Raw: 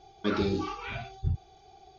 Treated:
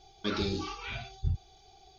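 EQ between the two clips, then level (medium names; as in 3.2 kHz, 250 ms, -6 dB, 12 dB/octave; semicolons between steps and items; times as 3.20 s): bass shelf 66 Hz +11 dB; peaking EQ 4.2 kHz +7 dB 1.8 oct; treble shelf 6.1 kHz +9.5 dB; -5.5 dB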